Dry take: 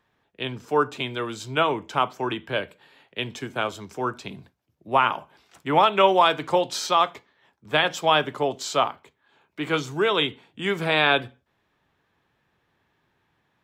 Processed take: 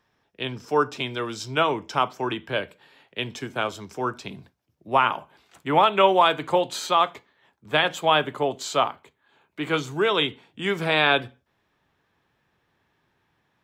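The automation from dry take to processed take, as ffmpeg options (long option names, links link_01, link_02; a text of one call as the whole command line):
ffmpeg -i in.wav -af "asetnsamples=nb_out_samples=441:pad=0,asendcmd='2.08 equalizer g 3.5;5.02 equalizer g -5.5;5.76 equalizer g -12.5;7.07 equalizer g -4;7.92 equalizer g -15;8.58 equalizer g -5;10.05 equalizer g 3',equalizer=frequency=5400:width_type=o:width=0.22:gain=11.5" out.wav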